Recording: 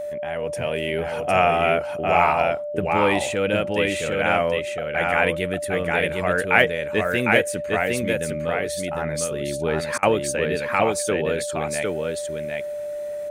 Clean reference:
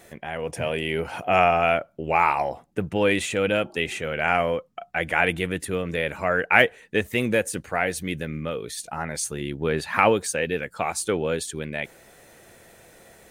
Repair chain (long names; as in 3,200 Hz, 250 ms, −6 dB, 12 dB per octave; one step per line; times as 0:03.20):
notch filter 590 Hz, Q 30
repair the gap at 0:09.98, 47 ms
echo removal 756 ms −3 dB